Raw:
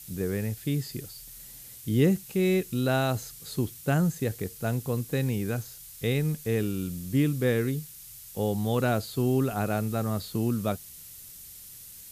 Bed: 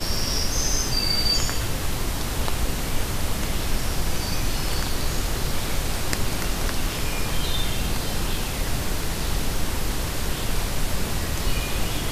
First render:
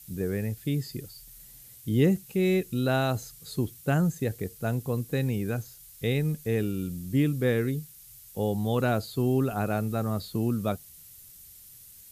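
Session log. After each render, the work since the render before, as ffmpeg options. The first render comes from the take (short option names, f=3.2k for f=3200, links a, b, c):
-af "afftdn=nr=6:nf=-46"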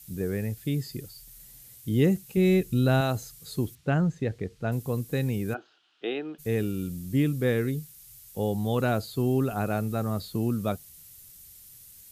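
-filter_complex "[0:a]asettb=1/sr,asplit=3[a][b][c];[a]atrim=end=2.374[d];[b]atrim=start=2.37:end=3.01,asetpts=PTS-STARTPTS,afade=t=in:d=0.004:c=qsin,afade=t=out:st=0.636:d=0.004:c=qsin,lowshelf=f=170:g=9.5[e];[c]atrim=start=3.006[f];[d][e]acrossfade=d=0.004:c1=hsin:c2=qsin[g];[g][f]acrossfade=d=0.004:c1=qsin:c2=hsin,asettb=1/sr,asplit=3[h][i][j];[h]atrim=end=3.754[k];[i]atrim=start=3.75:end=4.72,asetpts=PTS-STARTPTS,afade=t=in:d=0.004:c=qsin,afade=t=out:st=0.966:d=0.004:c=qsin,lowpass=3.9k[l];[j]atrim=start=4.716[m];[k][l]acrossfade=d=0.004:c1=hsin:c2=qsin[n];[n][m]acrossfade=d=0.004:c1=qsin:c2=hsin,asplit=3[o][p][q];[o]afade=t=out:st=5.53:d=0.02[r];[p]highpass=f=320:w=0.5412,highpass=f=320:w=1.3066,equalizer=f=330:t=q:w=4:g=9,equalizer=f=510:t=q:w=4:g=-8,equalizer=f=730:t=q:w=4:g=7,equalizer=f=1.4k:t=q:w=4:g=8,equalizer=f=2.1k:t=q:w=4:g=-9,equalizer=f=3k:t=q:w=4:g=7,lowpass=f=3.3k:w=0.5412,lowpass=f=3.3k:w=1.3066,afade=t=in:st=5.53:d=0.02,afade=t=out:st=6.38:d=0.02[s];[q]afade=t=in:st=6.38:d=0.02[t];[r][s][t]amix=inputs=3:normalize=0"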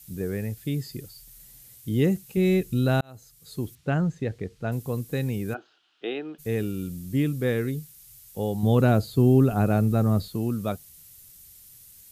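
-filter_complex "[0:a]asettb=1/sr,asplit=3[a][b][c];[a]atrim=end=8.634[d];[b]atrim=start=8.63:end=10.28,asetpts=PTS-STARTPTS,afade=t=in:d=0.004:c=qsin,afade=t=out:st=1.646:d=0.004:c=qsin,lowshelf=f=480:g=9[e];[c]atrim=start=10.276[f];[d][e]acrossfade=d=0.004:c1=hsin:c2=qsin[g];[g][f]acrossfade=d=0.004:c1=qsin:c2=hsin,asplit=2[h][i];[h]atrim=end=3.01,asetpts=PTS-STARTPTS,afade=t=out:st=3.006:d=0.004:c=hsin[j];[i]atrim=start=3.01,asetpts=PTS-STARTPTS,afade=t=in:d=0.79[k];[j][k]concat=n=2:v=0:a=1"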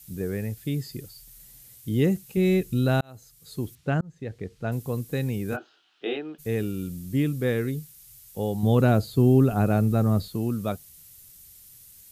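-filter_complex "[0:a]asettb=1/sr,asplit=3[a][b][c];[a]atrim=end=5.504[d];[b]atrim=start=5.5:end=6.17,asetpts=PTS-STARTPTS,afade=t=in:d=0.004:c=qsin,afade=t=out:st=0.666:d=0.004:c=qsin,asplit=2[e][f];[f]adelay=21,volume=-2dB[g];[e][g]amix=inputs=2:normalize=0,atrim=end_sample=29547[h];[c]atrim=start=6.166[i];[d][h]acrossfade=d=0.004:c1=hsin:c2=qsin[j];[j][i]acrossfade=d=0.004:c1=qsin:c2=hsin,asplit=2[k][l];[k]atrim=end=4.01,asetpts=PTS-STARTPTS,afade=t=out:st=4.006:d=0.004:c=hsin[m];[l]atrim=start=4.01,asetpts=PTS-STARTPTS,afade=t=in:d=0.72:c=qsin[n];[m][n]concat=n=2:v=0:a=1"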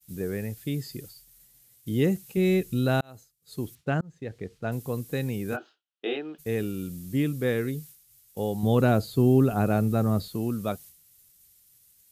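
-af "agate=range=-33dB:threshold=-42dB:ratio=3:detection=peak,lowshelf=f=130:g=-6"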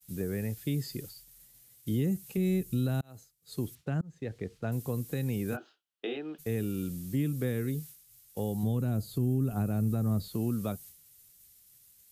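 -filter_complex "[0:a]acrossover=split=250|6600[a][b][c];[b]acompressor=threshold=-35dB:ratio=6[d];[a][d][c]amix=inputs=3:normalize=0,alimiter=limit=-21dB:level=0:latency=1:release=256"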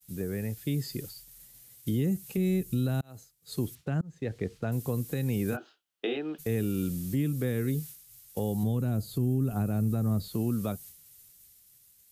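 -af "dynaudnorm=f=190:g=11:m=5dB,alimiter=limit=-20dB:level=0:latency=1:release=482"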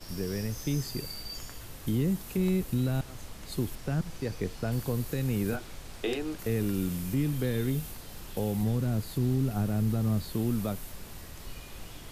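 -filter_complex "[1:a]volume=-19dB[a];[0:a][a]amix=inputs=2:normalize=0"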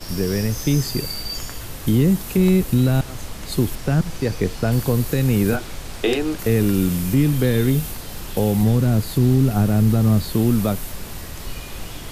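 -af "volume=11.5dB"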